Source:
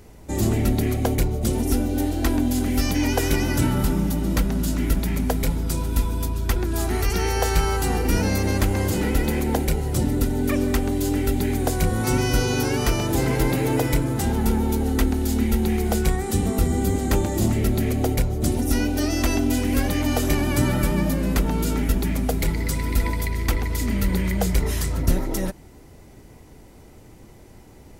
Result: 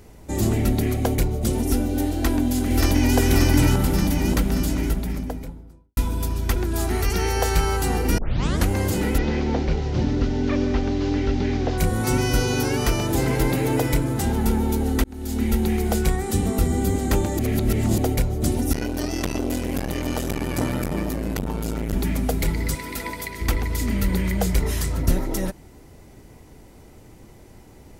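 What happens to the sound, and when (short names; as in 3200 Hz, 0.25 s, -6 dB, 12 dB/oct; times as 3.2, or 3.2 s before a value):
2.12–3.17 echo throw 0.58 s, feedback 65%, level -1 dB
4.52–5.97 studio fade out
8.18 tape start 0.49 s
9.18–11.78 delta modulation 32 kbps, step -36.5 dBFS
15.04–15.49 fade in
17.39–17.98 reverse
18.73–21.93 core saturation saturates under 520 Hz
22.75–23.41 HPF 420 Hz 6 dB/oct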